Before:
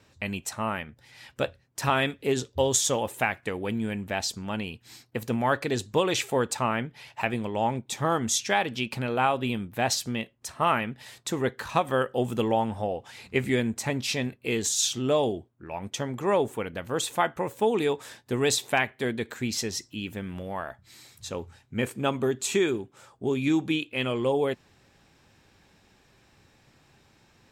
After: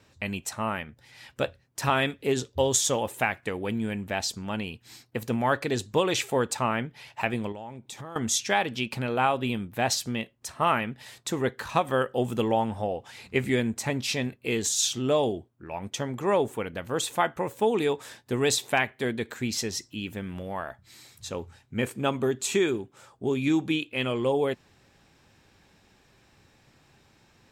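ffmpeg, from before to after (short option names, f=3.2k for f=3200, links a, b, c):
-filter_complex "[0:a]asettb=1/sr,asplit=3[a][b][c];[a]atrim=end=7.524[d];[b]atrim=start=7.52:end=8.16,asetpts=PTS-STARTPTS,afade=t=in:d=0.004:c=qsin,afade=t=out:st=0.636:d=0.004:c=qsin,acompressor=threshold=-37dB:ratio=6:attack=3.2:release=140:knee=1:detection=peak[e];[c]atrim=start=8.156[f];[d][e]acrossfade=d=0.004:c1=hsin:c2=qsin[g];[g][f]acrossfade=d=0.004:c1=qsin:c2=hsin"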